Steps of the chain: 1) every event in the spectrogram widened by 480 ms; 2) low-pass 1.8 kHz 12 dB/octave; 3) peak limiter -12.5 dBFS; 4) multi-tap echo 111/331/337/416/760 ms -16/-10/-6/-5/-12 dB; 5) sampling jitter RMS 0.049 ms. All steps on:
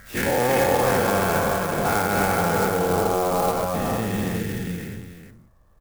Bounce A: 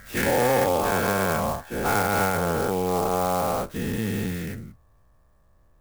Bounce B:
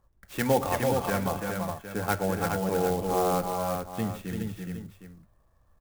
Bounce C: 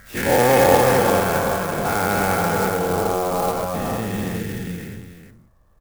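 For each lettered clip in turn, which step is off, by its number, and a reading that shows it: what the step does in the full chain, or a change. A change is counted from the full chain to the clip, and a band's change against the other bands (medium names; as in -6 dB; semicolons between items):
4, momentary loudness spread change -1 LU; 1, 2 kHz band -3.0 dB; 3, crest factor change +4.5 dB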